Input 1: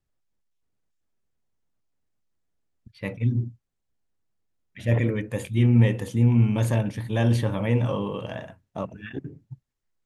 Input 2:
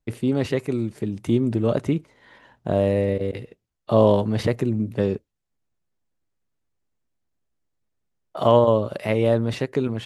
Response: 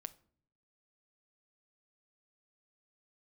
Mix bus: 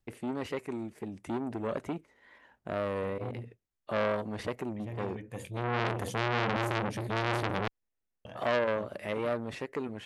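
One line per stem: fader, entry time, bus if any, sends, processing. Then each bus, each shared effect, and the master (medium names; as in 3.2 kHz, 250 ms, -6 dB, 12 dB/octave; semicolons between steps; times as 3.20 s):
+2.0 dB, 0.00 s, muted 7.68–8.25 s, no send, peak limiter -14.5 dBFS, peak gain reduction 7.5 dB; auto duck -16 dB, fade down 0.30 s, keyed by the second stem
-9.0 dB, 0.00 s, no send, graphic EQ 125/2000/4000 Hz -9/+4/-4 dB; wow and flutter 59 cents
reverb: none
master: transformer saturation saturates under 1.7 kHz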